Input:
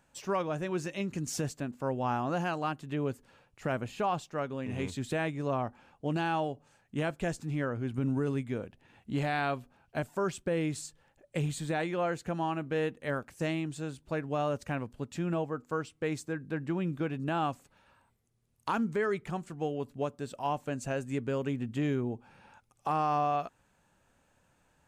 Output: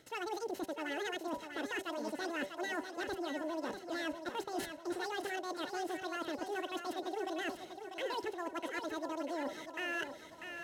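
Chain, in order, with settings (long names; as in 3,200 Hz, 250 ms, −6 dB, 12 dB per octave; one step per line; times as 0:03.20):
variable-slope delta modulation 32 kbit/s
bass and treble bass +5 dB, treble −7 dB
hum removal 83.1 Hz, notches 5
reversed playback
downward compressor 10 to 1, threshold −43 dBFS, peak gain reduction 19 dB
reversed playback
notch comb filter 500 Hz
wrong playback speed 33 rpm record played at 78 rpm
on a send: feedback echo with a high-pass in the loop 644 ms, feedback 52%, high-pass 320 Hz, level −7 dB
on the sum: level +7.5 dB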